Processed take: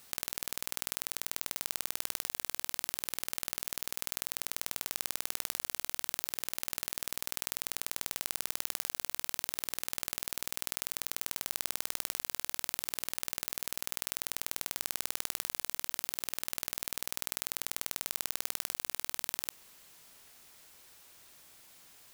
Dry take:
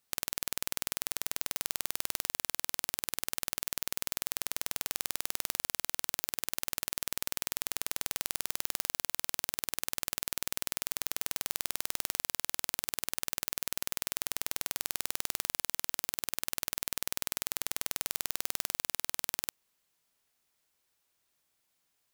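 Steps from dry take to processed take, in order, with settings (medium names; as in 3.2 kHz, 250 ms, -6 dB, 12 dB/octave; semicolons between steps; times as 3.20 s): level flattener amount 50%; trim -1.5 dB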